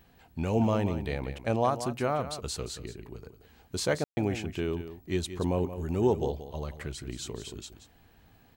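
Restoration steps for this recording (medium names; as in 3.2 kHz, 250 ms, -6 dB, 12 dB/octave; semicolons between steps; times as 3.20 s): room tone fill 4.04–4.17 s; inverse comb 179 ms -11.5 dB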